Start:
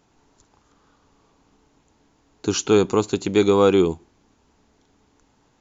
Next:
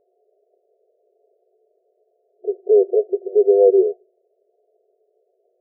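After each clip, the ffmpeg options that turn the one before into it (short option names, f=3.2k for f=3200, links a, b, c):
-af "afftfilt=real='re*between(b*sr/4096,360,730)':imag='im*between(b*sr/4096,360,730)':win_size=4096:overlap=0.75,volume=4.5dB"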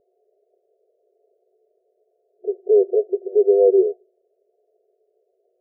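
-af "lowshelf=f=290:g=11.5,volume=-5dB"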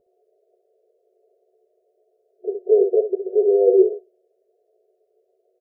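-af "aecho=1:1:11|65:0.422|0.398"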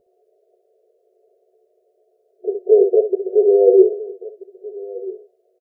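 -filter_complex "[0:a]asplit=2[a][b];[b]adelay=1283,volume=-18dB,highshelf=f=4k:g=-28.9[c];[a][c]amix=inputs=2:normalize=0,volume=3.5dB"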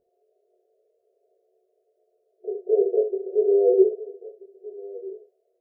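-af "flanger=delay=22.5:depth=3.5:speed=0.47,volume=-4.5dB"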